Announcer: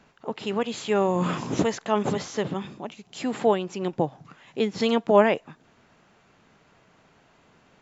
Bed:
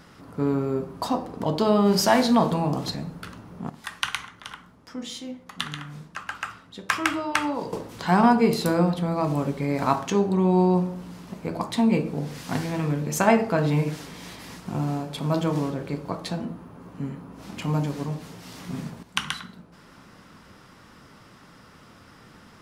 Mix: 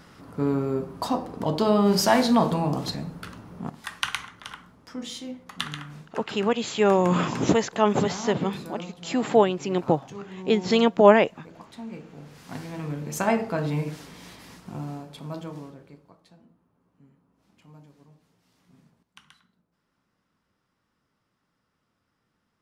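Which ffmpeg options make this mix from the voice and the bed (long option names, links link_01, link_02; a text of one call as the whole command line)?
ffmpeg -i stem1.wav -i stem2.wav -filter_complex "[0:a]adelay=5900,volume=3dB[link_01];[1:a]volume=12.5dB,afade=type=out:start_time=5.72:duration=0.79:silence=0.141254,afade=type=in:start_time=12.06:duration=1.13:silence=0.223872,afade=type=out:start_time=14.2:duration=1.95:silence=0.0891251[link_02];[link_01][link_02]amix=inputs=2:normalize=0" out.wav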